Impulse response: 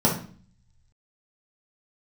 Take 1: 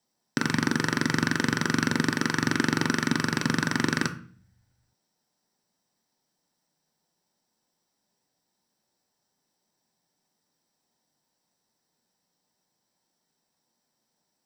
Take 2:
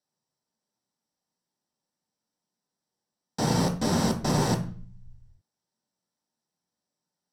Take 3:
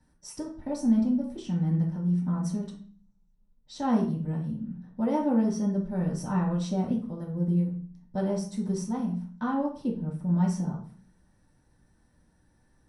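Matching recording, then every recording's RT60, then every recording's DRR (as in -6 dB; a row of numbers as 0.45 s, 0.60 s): 3; 0.45 s, 0.45 s, 0.45 s; 7.0 dB, 2.5 dB, -5.0 dB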